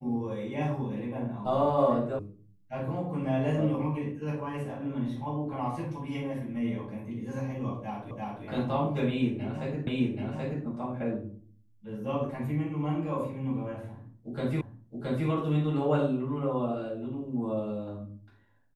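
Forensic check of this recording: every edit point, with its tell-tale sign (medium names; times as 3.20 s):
2.19 s: sound stops dead
8.11 s: repeat of the last 0.34 s
9.87 s: repeat of the last 0.78 s
14.61 s: repeat of the last 0.67 s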